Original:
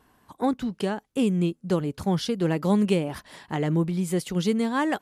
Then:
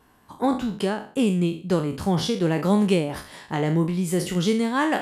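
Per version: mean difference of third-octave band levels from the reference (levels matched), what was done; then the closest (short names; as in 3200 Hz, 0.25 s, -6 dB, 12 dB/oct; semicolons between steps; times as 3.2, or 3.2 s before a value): 3.5 dB: spectral trails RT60 0.42 s; gain +1.5 dB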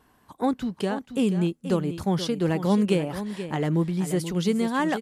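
2.5 dB: echo 0.481 s -11 dB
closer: second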